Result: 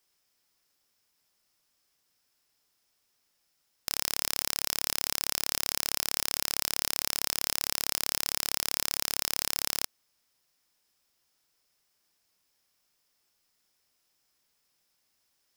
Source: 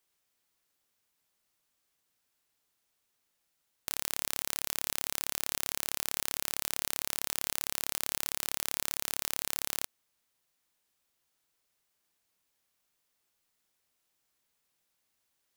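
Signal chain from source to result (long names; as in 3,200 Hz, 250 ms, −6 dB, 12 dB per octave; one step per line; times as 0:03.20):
parametric band 5,200 Hz +9.5 dB 0.21 octaves
level +3 dB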